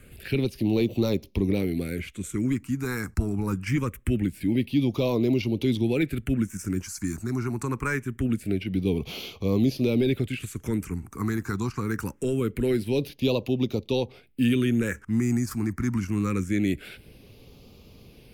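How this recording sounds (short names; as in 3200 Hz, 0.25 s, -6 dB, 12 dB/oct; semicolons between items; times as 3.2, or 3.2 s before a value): phasing stages 4, 0.24 Hz, lowest notch 530–1500 Hz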